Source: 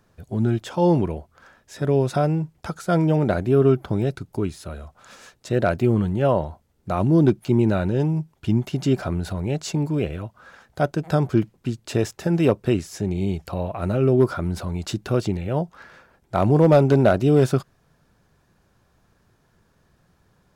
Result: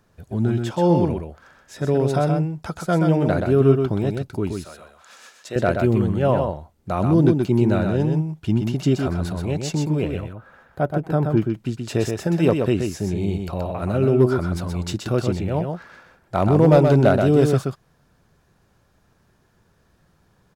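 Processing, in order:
0:04.52–0:05.56: high-pass filter 780 Hz 6 dB per octave
0:10.20–0:11.37: parametric band 5,900 Hz −14.5 dB 2.1 octaves
single-tap delay 126 ms −5 dB

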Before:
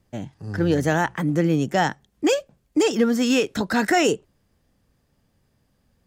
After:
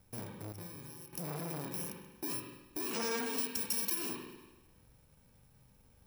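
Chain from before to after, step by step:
samples in bit-reversed order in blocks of 64 samples
brickwall limiter −19 dBFS, peak gain reduction 10 dB
downward compressor 3 to 1, threshold −39 dBFS, peak gain reduction 12.5 dB
0:02.94–0:03.19: gain on a spectral selection 450–8,000 Hz +11 dB
0:03.38–0:03.95: tilt shelving filter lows −6 dB, about 1,400 Hz
feedback echo with a high-pass in the loop 102 ms, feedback 59%, level −20.5 dB
spring reverb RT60 1.1 s, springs 40/48 ms, chirp 20 ms, DRR 2 dB
0:00.52–0:01.13: noise gate −33 dBFS, range −11 dB
saturating transformer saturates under 1,800 Hz

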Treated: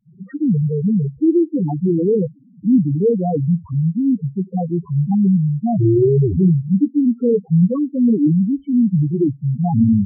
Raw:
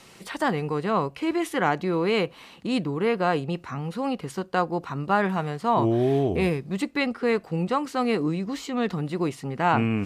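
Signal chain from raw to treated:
noise gate with hold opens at −40 dBFS
low-pass filter 1,100 Hz 6 dB per octave
low-shelf EQ 480 Hz +11.5 dB
spectral peaks only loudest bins 2
level +5.5 dB

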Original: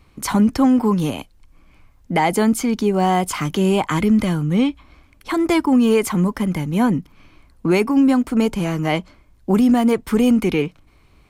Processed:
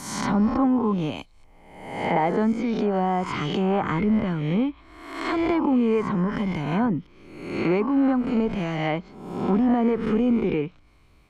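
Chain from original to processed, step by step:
peak hold with a rise ahead of every peak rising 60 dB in 0.92 s
dynamic equaliser 5,800 Hz, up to +4 dB, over −37 dBFS, Q 0.7
treble cut that deepens with the level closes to 1,500 Hz, closed at −12 dBFS
level −6.5 dB

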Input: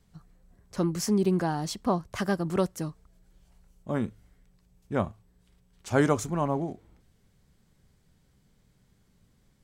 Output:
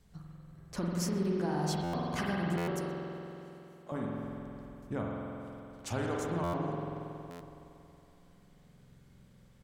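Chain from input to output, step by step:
downward compressor, threshold −34 dBFS, peak gain reduction 16 dB
0:02.76–0:03.92: high-pass filter 650 Hz
single-tap delay 125 ms −23 dB
spring reverb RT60 3.1 s, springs 46 ms, chirp 40 ms, DRR −3 dB
buffer that repeats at 0:01.83/0:02.57/0:06.43/0:07.30, samples 512, times 8

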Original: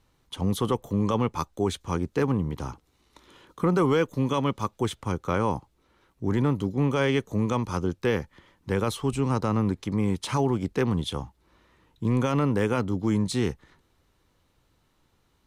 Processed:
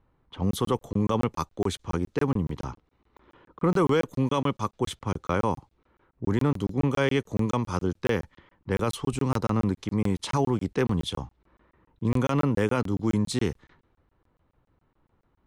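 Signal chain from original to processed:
low-pass that shuts in the quiet parts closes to 1,500 Hz, open at −23 dBFS
regular buffer underruns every 0.14 s, samples 1,024, zero, from 0:00.51

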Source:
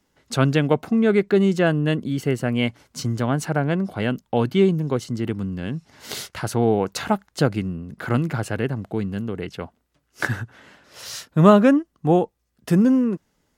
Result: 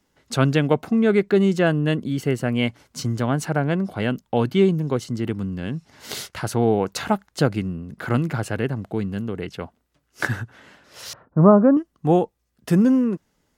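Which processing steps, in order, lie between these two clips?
0:11.13–0:11.77: low-pass filter 1,200 Hz 24 dB per octave

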